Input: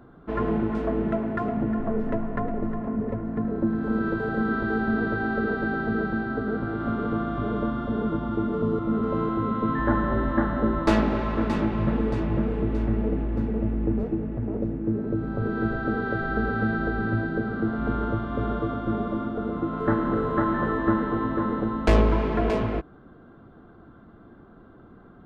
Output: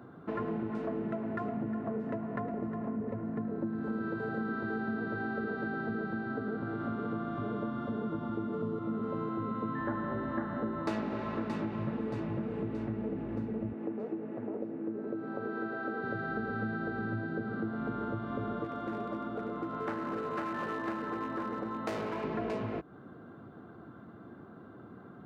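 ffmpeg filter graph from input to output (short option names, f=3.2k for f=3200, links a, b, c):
-filter_complex "[0:a]asettb=1/sr,asplit=3[a][b][c];[a]atrim=end=13.724[d];[b]atrim=start=13.72:end=16.04,asetpts=PTS-STARTPTS,afade=t=in:d=0.004:c=qsin,afade=t=out:st=2.316:d=0.004:c=qsin,highpass=320,highshelf=f=4.3k:g=-6.5[e];[c]atrim=start=16.036[f];[d][e]acrossfade=d=0.004:c1=hsin:c2=qsin[g];[g][f]acrossfade=d=0.004:c1=qsin:c2=hsin,asettb=1/sr,asplit=3[h][i][j];[h]atrim=end=18.644[k];[i]atrim=start=18.64:end=22.24,asetpts=PTS-STARTPTS,afade=t=in:d=0.004:c=qsin,afade=t=out:st=3.596:d=0.004:c=qsin,highpass=f=400:p=1,aeval=exprs='clip(val(0),-1,0.0501)':c=same,aeval=exprs='val(0)+0.00794*(sin(2*PI*60*n/s)+sin(2*PI*2*60*n/s)/2+sin(2*PI*3*60*n/s)/3+sin(2*PI*4*60*n/s)/4+sin(2*PI*5*60*n/s)/5)':c=same[l];[j]atrim=start=22.236[m];[k][l]acrossfade=d=0.004:c1=hsin:c2=qsin[n];[n][m]acrossfade=d=0.004:c1=qsin:c2=hsin,highpass=f=93:w=0.5412,highpass=f=93:w=1.3066,bandreject=f=3.3k:w=18,acompressor=threshold=-35dB:ratio=3"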